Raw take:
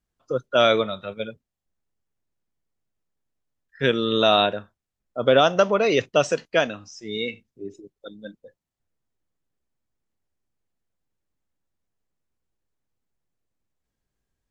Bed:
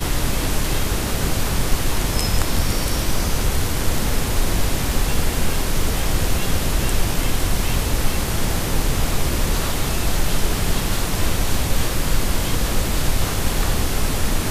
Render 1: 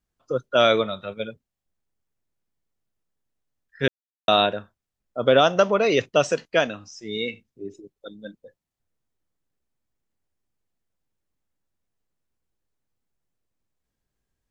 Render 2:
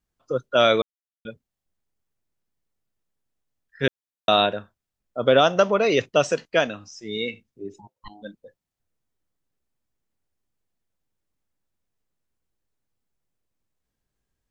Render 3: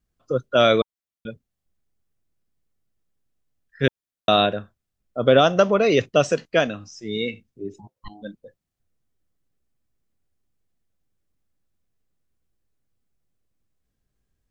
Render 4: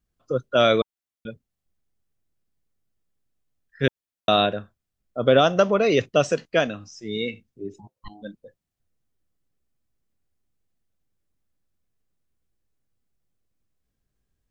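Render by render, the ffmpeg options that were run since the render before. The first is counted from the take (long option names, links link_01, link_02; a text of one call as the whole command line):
ffmpeg -i in.wav -filter_complex "[0:a]asplit=3[link_01][link_02][link_03];[link_01]atrim=end=3.88,asetpts=PTS-STARTPTS,afade=type=out:start_time=3.876:duration=0.004:curve=hsin[link_04];[link_02]atrim=start=3.88:end=4.28,asetpts=PTS-STARTPTS,volume=0[link_05];[link_03]atrim=start=4.28,asetpts=PTS-STARTPTS,afade=type=in:duration=0.004:curve=hsin[link_06];[link_04][link_05][link_06]concat=n=3:v=0:a=1" out.wav
ffmpeg -i in.wav -filter_complex "[0:a]asplit=3[link_01][link_02][link_03];[link_01]afade=type=out:start_time=7.78:duration=0.02[link_04];[link_02]aeval=exprs='val(0)*sin(2*PI*520*n/s)':channel_layout=same,afade=type=in:start_time=7.78:duration=0.02,afade=type=out:start_time=8.21:duration=0.02[link_05];[link_03]afade=type=in:start_time=8.21:duration=0.02[link_06];[link_04][link_05][link_06]amix=inputs=3:normalize=0,asplit=3[link_07][link_08][link_09];[link_07]atrim=end=0.82,asetpts=PTS-STARTPTS,afade=type=out:start_time=0.816:duration=0.004:curve=hsin[link_10];[link_08]atrim=start=0.82:end=1.25,asetpts=PTS-STARTPTS,volume=0[link_11];[link_09]atrim=start=1.25,asetpts=PTS-STARTPTS,afade=type=in:duration=0.004:curve=hsin[link_12];[link_10][link_11][link_12]concat=n=3:v=0:a=1" out.wav
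ffmpeg -i in.wav -af "lowshelf=frequency=310:gain=6.5,bandreject=frequency=910:width=10" out.wav
ffmpeg -i in.wav -af "volume=-1.5dB" out.wav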